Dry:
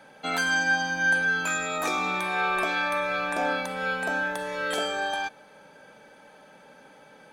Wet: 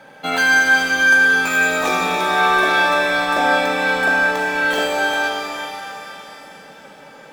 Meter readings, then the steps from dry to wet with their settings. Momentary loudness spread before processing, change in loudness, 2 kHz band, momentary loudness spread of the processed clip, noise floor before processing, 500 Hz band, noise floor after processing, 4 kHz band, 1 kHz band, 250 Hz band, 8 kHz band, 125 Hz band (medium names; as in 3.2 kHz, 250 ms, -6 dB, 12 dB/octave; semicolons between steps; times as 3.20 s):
7 LU, +10.5 dB, +11.0 dB, 14 LU, -53 dBFS, +10.0 dB, -42 dBFS, +10.0 dB, +10.0 dB, +9.5 dB, +7.5 dB, +5.5 dB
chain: median filter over 5 samples; pitch-shifted reverb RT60 3.2 s, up +7 st, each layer -8 dB, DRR 1 dB; trim +7 dB